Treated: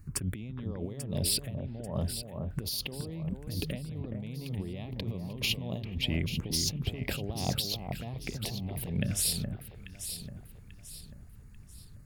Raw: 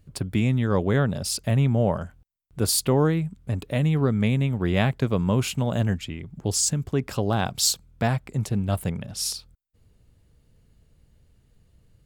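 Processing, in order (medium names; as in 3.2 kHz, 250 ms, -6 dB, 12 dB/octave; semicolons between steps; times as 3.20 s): touch-sensitive phaser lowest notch 550 Hz, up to 1.5 kHz, full sweep at -21.5 dBFS; compressor with a negative ratio -34 dBFS, ratio -1; echo whose repeats swap between lows and highs 420 ms, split 1.6 kHz, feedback 60%, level -5 dB; trim -2 dB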